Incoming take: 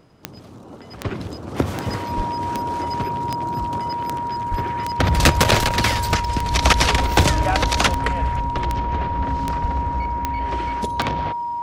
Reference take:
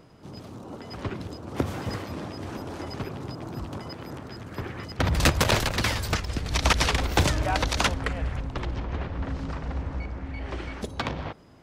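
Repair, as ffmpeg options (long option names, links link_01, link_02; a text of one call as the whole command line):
ffmpeg -i in.wav -filter_complex "[0:a]adeclick=threshold=4,bandreject=frequency=950:width=30,asplit=3[link_01][link_02][link_03];[link_01]afade=type=out:start_time=2.16:duration=0.02[link_04];[link_02]highpass=frequency=140:width=0.5412,highpass=frequency=140:width=1.3066,afade=type=in:start_time=2.16:duration=0.02,afade=type=out:start_time=2.28:duration=0.02[link_05];[link_03]afade=type=in:start_time=2.28:duration=0.02[link_06];[link_04][link_05][link_06]amix=inputs=3:normalize=0,asplit=3[link_07][link_08][link_09];[link_07]afade=type=out:start_time=4.5:duration=0.02[link_10];[link_08]highpass=frequency=140:width=0.5412,highpass=frequency=140:width=1.3066,afade=type=in:start_time=4.5:duration=0.02,afade=type=out:start_time=4.62:duration=0.02[link_11];[link_09]afade=type=in:start_time=4.62:duration=0.02[link_12];[link_10][link_11][link_12]amix=inputs=3:normalize=0,asplit=3[link_13][link_14][link_15];[link_13]afade=type=out:start_time=9.61:duration=0.02[link_16];[link_14]highpass=frequency=140:width=0.5412,highpass=frequency=140:width=1.3066,afade=type=in:start_time=9.61:duration=0.02,afade=type=out:start_time=9.73:duration=0.02[link_17];[link_15]afade=type=in:start_time=9.73:duration=0.02[link_18];[link_16][link_17][link_18]amix=inputs=3:normalize=0,asetnsamples=nb_out_samples=441:pad=0,asendcmd='1.05 volume volume -6dB',volume=0dB" out.wav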